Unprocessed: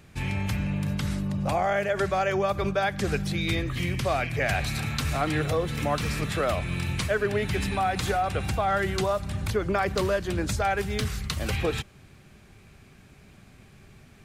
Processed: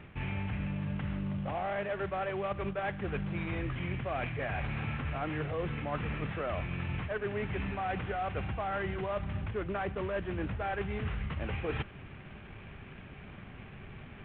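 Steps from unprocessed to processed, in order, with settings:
variable-slope delta modulation 16 kbit/s
reversed playback
downward compressor 10 to 1, threshold −36 dBFS, peak gain reduction 15 dB
reversed playback
level +4.5 dB

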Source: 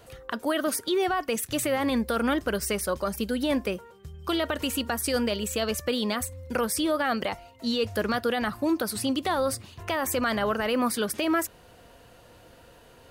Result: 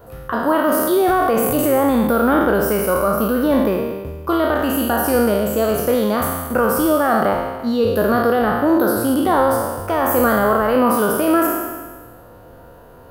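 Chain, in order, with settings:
peak hold with a decay on every bin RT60 1.43 s
flat-topped bell 4,300 Hz −15 dB 2.6 octaves
0:00.69–0:01.80: transient designer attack +1 dB, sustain +7 dB
level +8 dB

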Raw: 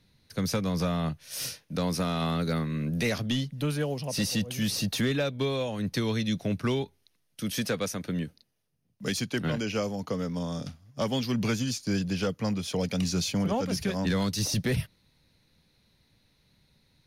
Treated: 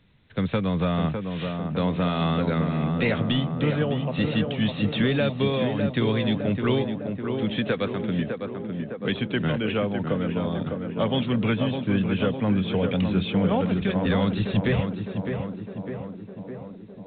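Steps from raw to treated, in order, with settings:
tape delay 607 ms, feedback 77%, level −3.5 dB, low-pass 1,400 Hz
level +4 dB
A-law companding 64 kbit/s 8,000 Hz

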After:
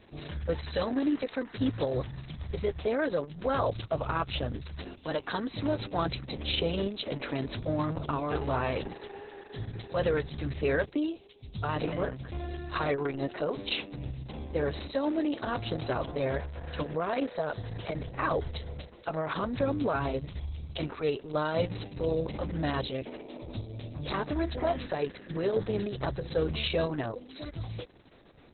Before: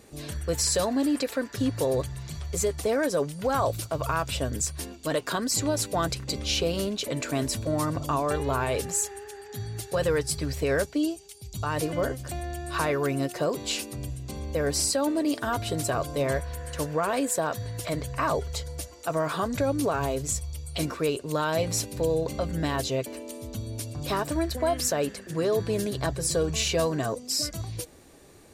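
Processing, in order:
level −2 dB
Opus 6 kbit/s 48,000 Hz

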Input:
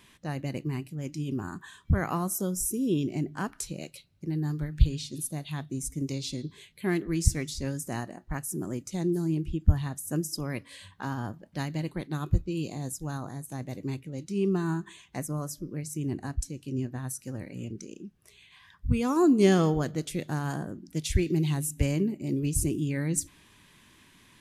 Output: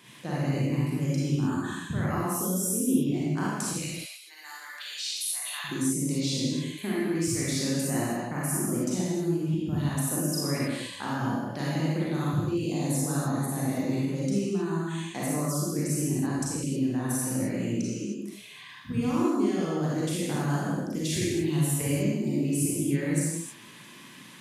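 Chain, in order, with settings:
high-pass filter 120 Hz 24 dB per octave, from 0:03.73 1,100 Hz, from 0:05.64 150 Hz
downward compressor 16 to 1, threshold −34 dBFS, peak gain reduction 19 dB
convolution reverb, pre-delay 32 ms, DRR −7 dB
level +2.5 dB

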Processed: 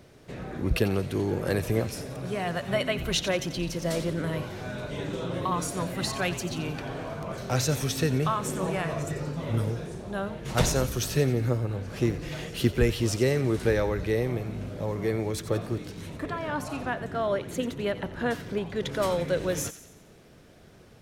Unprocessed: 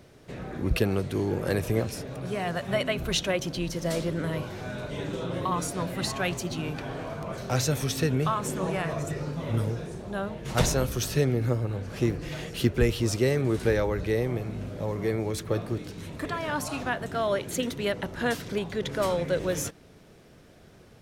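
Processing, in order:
0:16.17–0:18.76: high-shelf EQ 2,600 Hz −9 dB
delay with a high-pass on its return 89 ms, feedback 50%, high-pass 1,800 Hz, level −12 dB

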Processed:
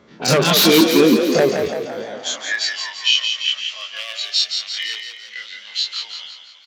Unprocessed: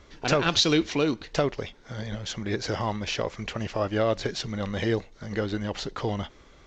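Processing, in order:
every bin's largest magnitude spread in time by 60 ms
noise reduction from a noise print of the clip's start 11 dB
mains-hum notches 50/100/150/200/250/300/350 Hz
in parallel at −1 dB: downward compressor 4 to 1, threshold −34 dBFS, peak gain reduction 16.5 dB
on the sum: wave folding −15.5 dBFS
high-pass filter sweep 180 Hz → 2,900 Hz, 0:01.67–0:02.72
on a send: echo with shifted repeats 170 ms, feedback 58%, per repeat +33 Hz, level −6 dB
on the sum: one half of a high-frequency compander decoder only
level +6.5 dB

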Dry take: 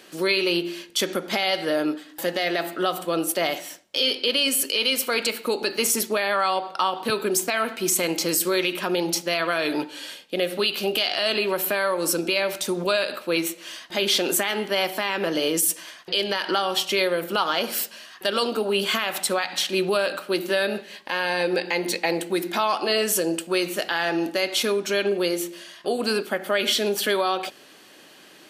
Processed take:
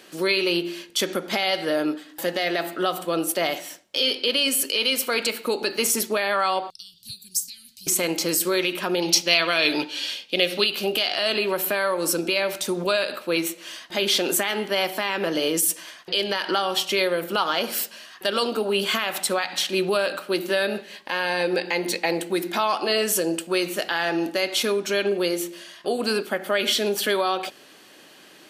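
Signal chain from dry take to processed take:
0:06.70–0:07.87: Chebyshev band-stop filter 110–4,800 Hz, order 3
0:09.02–0:10.64: flat-topped bell 3,700 Hz +9 dB

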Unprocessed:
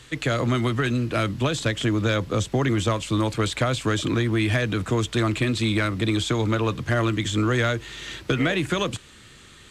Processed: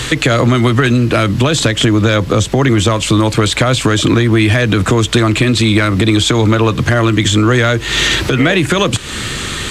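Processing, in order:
downward compressor 8 to 1, threshold −36 dBFS, peak gain reduction 17.5 dB
boost into a limiter +28.5 dB
level −1 dB

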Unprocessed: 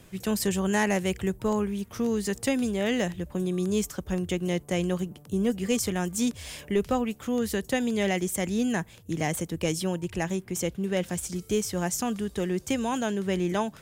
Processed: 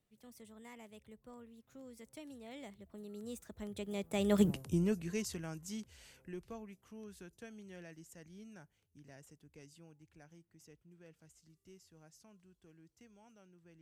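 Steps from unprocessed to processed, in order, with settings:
source passing by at 0:04.49, 42 m/s, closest 2.5 metres
level +8 dB

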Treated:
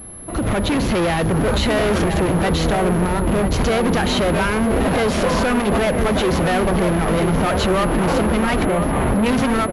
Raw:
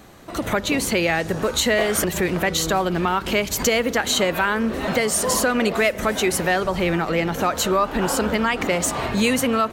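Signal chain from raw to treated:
0:02.75–0:03.51: running median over 25 samples
spectral tilt −2.5 dB per octave
brickwall limiter −12.5 dBFS, peak gain reduction 7.5 dB
automatic gain control
gain into a clipping stage and back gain 16.5 dB
0:08.65–0:09.26: high-frequency loss of the air 320 metres
slap from a distant wall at 170 metres, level −6 dB
switching amplifier with a slow clock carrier 11,000 Hz

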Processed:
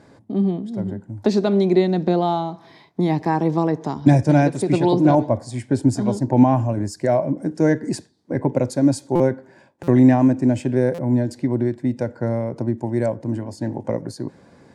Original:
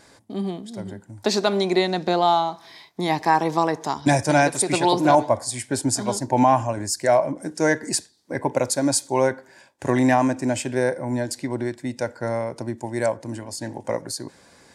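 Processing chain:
high-pass filter 130 Hz 12 dB per octave
spectral tilt −4 dB per octave
0:03.51–0:05.81: low-pass filter 10,000 Hz 12 dB per octave
dynamic equaliser 1,000 Hz, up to −6 dB, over −28 dBFS, Q 0.74
buffer that repeats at 0:09.15/0:09.83/0:10.94, samples 256, times 7

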